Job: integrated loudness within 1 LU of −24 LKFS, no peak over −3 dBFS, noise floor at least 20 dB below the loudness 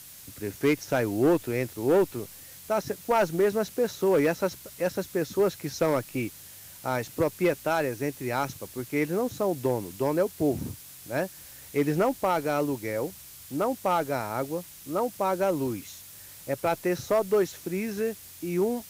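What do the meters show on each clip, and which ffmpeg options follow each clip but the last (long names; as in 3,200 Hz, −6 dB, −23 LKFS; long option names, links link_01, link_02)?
background noise floor −47 dBFS; target noise floor −48 dBFS; integrated loudness −28.0 LKFS; sample peak −15.0 dBFS; target loudness −24.0 LKFS
→ -af "afftdn=noise_reduction=6:noise_floor=-47"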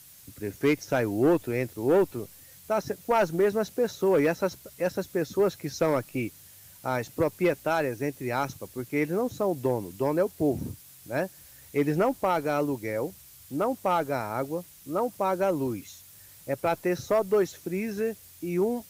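background noise floor −51 dBFS; integrated loudness −28.0 LKFS; sample peak −15.5 dBFS; target loudness −24.0 LKFS
→ -af "volume=4dB"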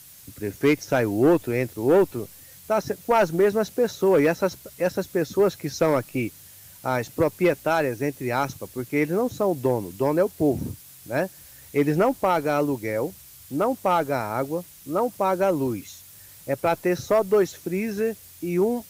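integrated loudness −24.0 LKFS; sample peak −11.5 dBFS; background noise floor −47 dBFS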